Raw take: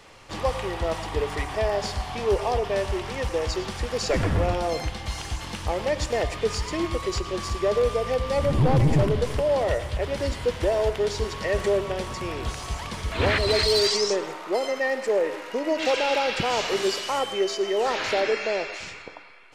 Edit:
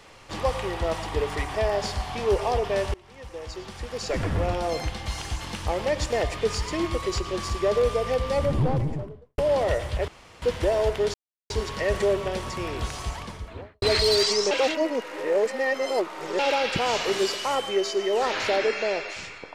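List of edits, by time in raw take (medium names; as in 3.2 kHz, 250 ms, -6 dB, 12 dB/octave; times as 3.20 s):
2.94–4.91 s: fade in, from -24 dB
8.22–9.38 s: studio fade out
10.08–10.42 s: room tone
11.14 s: insert silence 0.36 s
12.62–13.46 s: studio fade out
14.15–16.03 s: reverse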